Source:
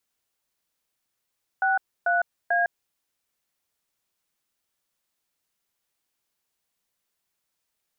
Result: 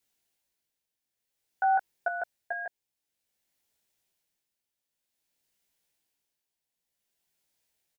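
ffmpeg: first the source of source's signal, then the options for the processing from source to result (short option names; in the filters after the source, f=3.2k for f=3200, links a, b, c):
-f lavfi -i "aevalsrc='0.0794*clip(min(mod(t,0.442),0.156-mod(t,0.442))/0.002,0,1)*(eq(floor(t/0.442),0)*(sin(2*PI*770*mod(t,0.442))+sin(2*PI*1477*mod(t,0.442)))+eq(floor(t/0.442),1)*(sin(2*PI*697*mod(t,0.442))+sin(2*PI*1477*mod(t,0.442)))+eq(floor(t/0.442),2)*(sin(2*PI*697*mod(t,0.442))+sin(2*PI*1633*mod(t,0.442))))':d=1.326:s=44100"
-filter_complex "[0:a]equalizer=f=1.2k:w=3:g=-9,tremolo=f=0.53:d=0.65,asplit=2[a][b];[b]adelay=18,volume=-3dB[c];[a][c]amix=inputs=2:normalize=0"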